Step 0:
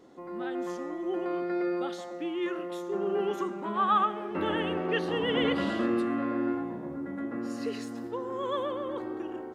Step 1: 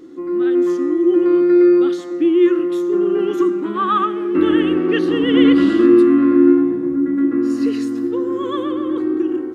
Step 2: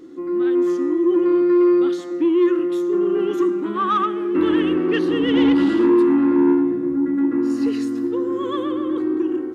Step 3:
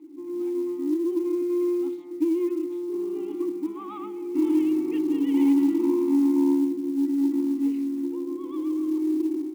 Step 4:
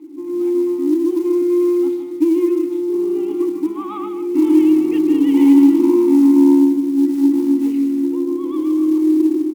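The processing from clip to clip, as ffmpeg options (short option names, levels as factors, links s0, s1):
-af "superequalizer=6b=3.98:8b=0.316:9b=0.355,volume=2.37"
-af "asoftclip=type=tanh:threshold=0.398,volume=0.841"
-filter_complex "[0:a]asplit=3[s0][s1][s2];[s0]bandpass=f=300:t=q:w=8,volume=1[s3];[s1]bandpass=f=870:t=q:w=8,volume=0.501[s4];[s2]bandpass=f=2240:t=q:w=8,volume=0.355[s5];[s3][s4][s5]amix=inputs=3:normalize=0,acrusher=bits=8:mode=log:mix=0:aa=0.000001,bandreject=f=52.12:t=h:w=4,bandreject=f=104.24:t=h:w=4,bandreject=f=156.36:t=h:w=4,bandreject=f=208.48:t=h:w=4,bandreject=f=260.6:t=h:w=4"
-af "aecho=1:1:154:0.355,volume=2.66" -ar 48000 -c:a libopus -b:a 128k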